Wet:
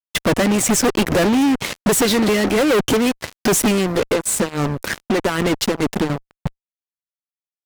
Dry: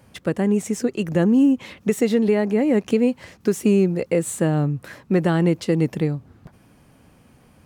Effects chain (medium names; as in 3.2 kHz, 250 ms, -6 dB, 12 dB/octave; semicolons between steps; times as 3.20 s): harmonic-percussive split harmonic -18 dB; bass shelf 420 Hz +4.5 dB; 3.70–6.10 s: compression 16:1, threshold -30 dBFS, peak gain reduction 15 dB; fuzz box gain 40 dB, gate -40 dBFS